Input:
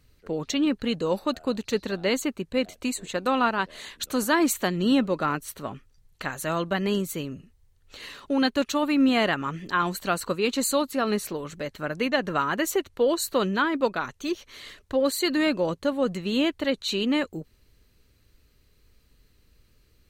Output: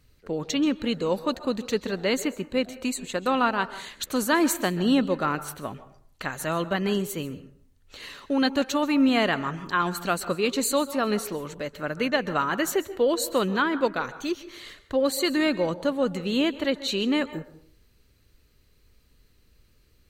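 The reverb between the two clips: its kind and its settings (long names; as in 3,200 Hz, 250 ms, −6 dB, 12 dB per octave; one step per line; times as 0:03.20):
dense smooth reverb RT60 0.53 s, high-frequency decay 0.5×, pre-delay 120 ms, DRR 14.5 dB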